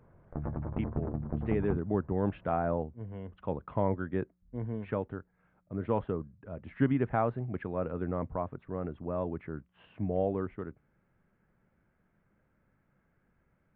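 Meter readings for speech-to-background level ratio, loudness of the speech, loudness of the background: 3.0 dB, −34.5 LKFS, −37.5 LKFS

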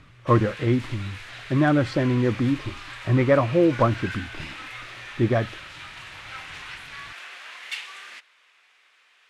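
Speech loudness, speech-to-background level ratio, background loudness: −23.0 LKFS, 14.5 dB, −37.5 LKFS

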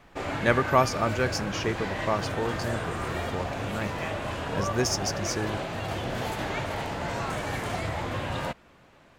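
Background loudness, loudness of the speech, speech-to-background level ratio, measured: −32.0 LKFS, −29.5 LKFS, 2.5 dB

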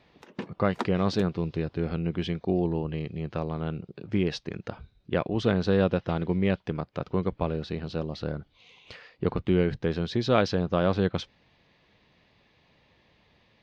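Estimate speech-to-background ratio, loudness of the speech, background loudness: 12.0 dB, −28.5 LKFS, −40.5 LKFS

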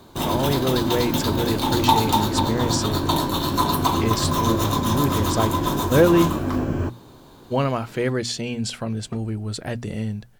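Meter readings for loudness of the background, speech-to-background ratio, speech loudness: −22.5 LKFS, −2.0 dB, −24.5 LKFS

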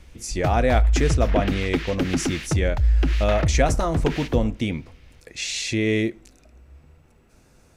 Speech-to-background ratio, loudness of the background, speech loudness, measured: −0.5 dB, −24.5 LKFS, −25.0 LKFS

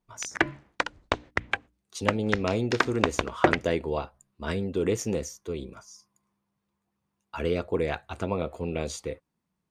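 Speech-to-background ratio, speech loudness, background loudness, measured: −1.0 dB, −30.5 LKFS, −29.5 LKFS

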